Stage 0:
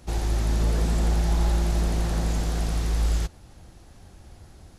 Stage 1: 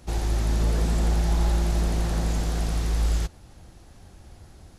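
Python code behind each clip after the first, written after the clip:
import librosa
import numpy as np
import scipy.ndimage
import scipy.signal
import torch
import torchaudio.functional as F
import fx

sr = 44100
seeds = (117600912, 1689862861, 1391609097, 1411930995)

y = x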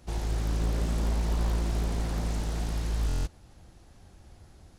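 y = fx.buffer_glitch(x, sr, at_s=(3.07,), block=1024, repeats=7)
y = fx.doppler_dist(y, sr, depth_ms=0.83)
y = F.gain(torch.from_numpy(y), -5.0).numpy()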